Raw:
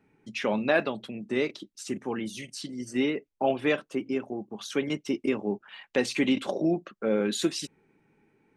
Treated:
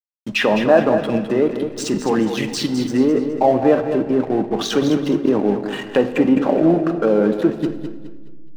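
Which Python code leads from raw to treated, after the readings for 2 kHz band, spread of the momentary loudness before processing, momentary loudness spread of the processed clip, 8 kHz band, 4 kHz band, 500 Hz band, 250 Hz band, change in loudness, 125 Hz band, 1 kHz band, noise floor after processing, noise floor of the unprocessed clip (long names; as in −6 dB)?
+6.0 dB, 11 LU, 8 LU, +6.0 dB, +7.5 dB, +12.0 dB, +12.0 dB, +11.5 dB, +13.0 dB, +12.5 dB, −31 dBFS, −75 dBFS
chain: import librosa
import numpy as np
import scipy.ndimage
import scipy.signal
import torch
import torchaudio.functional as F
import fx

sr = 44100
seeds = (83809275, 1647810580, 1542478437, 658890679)

p1 = fx.notch(x, sr, hz=2200.0, q=7.6)
p2 = fx.env_lowpass_down(p1, sr, base_hz=1100.0, full_db=-25.5)
p3 = fx.peak_eq(p2, sr, hz=820.0, db=5.0, octaves=2.8)
p4 = fx.over_compress(p3, sr, threshold_db=-32.0, ratio=-1.0)
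p5 = p3 + F.gain(torch.from_numpy(p4), -1.0).numpy()
p6 = fx.backlash(p5, sr, play_db=-34.0)
p7 = p6 + fx.echo_feedback(p6, sr, ms=209, feedback_pct=36, wet_db=-9.0, dry=0)
p8 = fx.room_shoebox(p7, sr, seeds[0], volume_m3=900.0, walls='mixed', distance_m=0.54)
y = F.gain(torch.from_numpy(p8), 6.0).numpy()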